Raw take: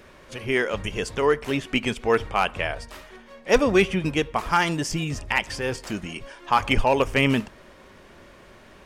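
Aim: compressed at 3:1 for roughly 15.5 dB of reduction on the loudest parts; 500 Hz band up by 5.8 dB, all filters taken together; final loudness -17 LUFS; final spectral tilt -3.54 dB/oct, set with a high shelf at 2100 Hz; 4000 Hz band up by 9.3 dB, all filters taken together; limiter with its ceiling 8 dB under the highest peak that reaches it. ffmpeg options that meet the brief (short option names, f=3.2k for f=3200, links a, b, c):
-af "equalizer=f=500:t=o:g=6.5,highshelf=f=2.1k:g=5,equalizer=f=4k:t=o:g=8.5,acompressor=threshold=-28dB:ratio=3,volume=14dB,alimiter=limit=-4.5dB:level=0:latency=1"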